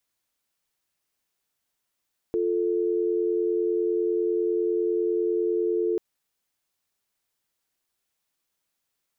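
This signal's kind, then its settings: call progress tone dial tone, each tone -24.5 dBFS 3.64 s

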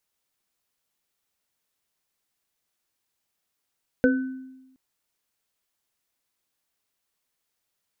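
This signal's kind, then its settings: sine partials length 0.72 s, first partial 261 Hz, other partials 499/1510 Hz, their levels 2/-7 dB, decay 1.05 s, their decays 0.22/0.57 s, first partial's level -16 dB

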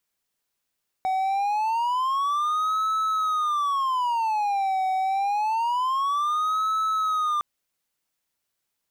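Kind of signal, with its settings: siren wail 755–1300 Hz 0.26 per s triangle -19.5 dBFS 6.36 s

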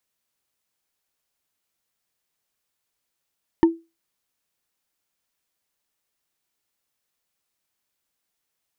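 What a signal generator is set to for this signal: wood hit bar, lowest mode 331 Hz, decay 0.25 s, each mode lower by 9 dB, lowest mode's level -7.5 dB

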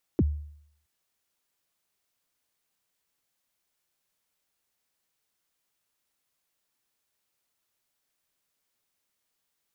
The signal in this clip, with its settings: kick drum length 0.67 s, from 410 Hz, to 74 Hz, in 38 ms, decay 0.67 s, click off, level -16.5 dB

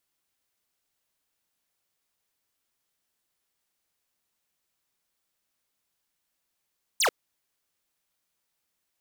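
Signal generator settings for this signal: laser zap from 9.7 kHz, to 380 Hz, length 0.09 s square, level -22.5 dB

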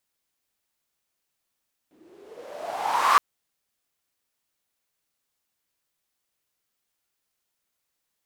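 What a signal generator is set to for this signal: swept filtered noise white, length 1.27 s bandpass, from 280 Hz, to 1.2 kHz, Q 7.2, exponential, gain ramp +36.5 dB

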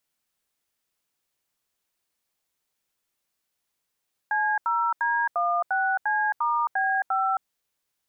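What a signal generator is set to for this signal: DTMF "C0D16C*B5", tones 268 ms, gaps 81 ms, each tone -24 dBFS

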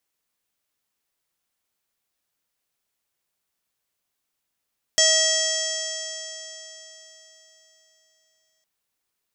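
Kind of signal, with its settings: stretched partials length 3.66 s, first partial 635 Hz, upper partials -20/0/-17.5/2/-16/-4.5/3.5/3/1/-1 dB, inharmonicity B 0.0022, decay 3.92 s, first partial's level -23.5 dB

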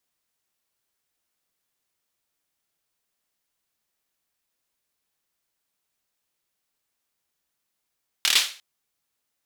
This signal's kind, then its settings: hand clap length 0.35 s, bursts 5, apart 26 ms, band 3.3 kHz, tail 0.38 s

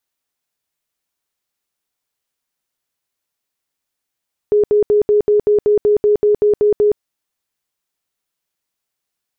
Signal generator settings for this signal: tone bursts 417 Hz, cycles 49, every 0.19 s, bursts 13, -9 dBFS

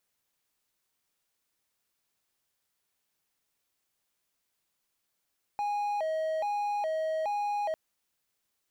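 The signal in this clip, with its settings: siren hi-lo 634–824 Hz 1.2 per s triangle -26 dBFS 2.15 s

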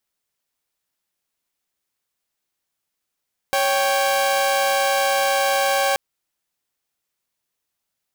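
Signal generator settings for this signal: chord C#5/G5 saw, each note -17.5 dBFS 2.43 s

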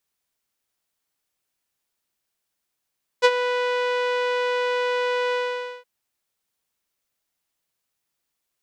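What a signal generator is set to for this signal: synth note saw B4 12 dB/octave, low-pass 3.1 kHz, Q 0.96, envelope 1 oct, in 0.06 s, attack 30 ms, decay 0.05 s, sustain -11 dB, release 0.51 s, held 2.11 s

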